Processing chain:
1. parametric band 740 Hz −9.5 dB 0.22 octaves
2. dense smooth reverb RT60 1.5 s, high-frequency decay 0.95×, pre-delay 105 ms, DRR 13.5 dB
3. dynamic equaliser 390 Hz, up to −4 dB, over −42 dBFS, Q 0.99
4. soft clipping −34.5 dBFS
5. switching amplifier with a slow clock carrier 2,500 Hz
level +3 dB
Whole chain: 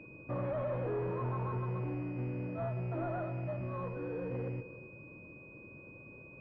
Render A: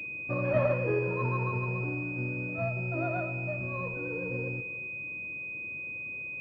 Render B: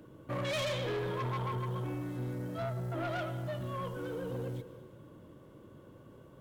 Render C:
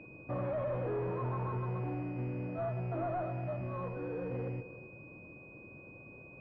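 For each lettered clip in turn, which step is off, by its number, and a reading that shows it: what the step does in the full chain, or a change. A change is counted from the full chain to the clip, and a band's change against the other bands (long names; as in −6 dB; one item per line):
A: 4, distortion level −8 dB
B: 5, 2 kHz band +5.5 dB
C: 1, 1 kHz band +2.0 dB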